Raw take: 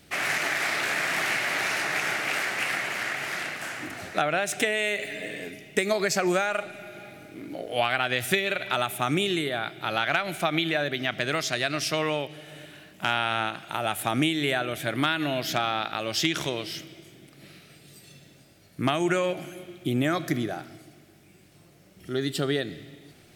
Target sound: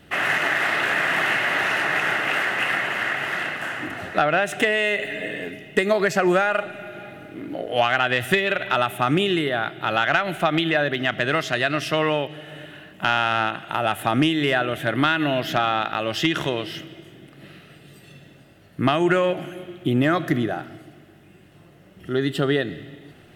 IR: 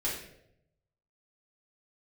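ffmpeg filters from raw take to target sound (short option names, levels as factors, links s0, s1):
-af "highshelf=f=3600:t=q:w=1.5:g=-9.5,acontrast=72,bandreject=f=2300:w=5.4,volume=0.891"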